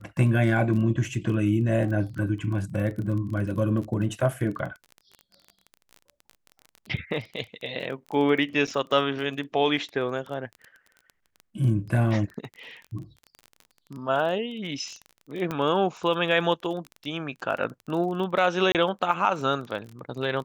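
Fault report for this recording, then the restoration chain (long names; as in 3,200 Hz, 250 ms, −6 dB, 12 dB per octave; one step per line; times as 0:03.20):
surface crackle 25 per second −33 dBFS
0:08.67–0:08.68: drop-out 6.5 ms
0:15.51: click −16 dBFS
0:18.72–0:18.75: drop-out 28 ms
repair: click removal
repair the gap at 0:08.67, 6.5 ms
repair the gap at 0:18.72, 28 ms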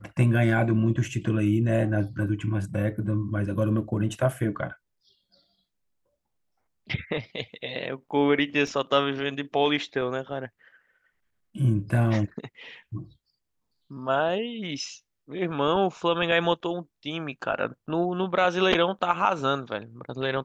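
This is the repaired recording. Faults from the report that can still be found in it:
none of them is left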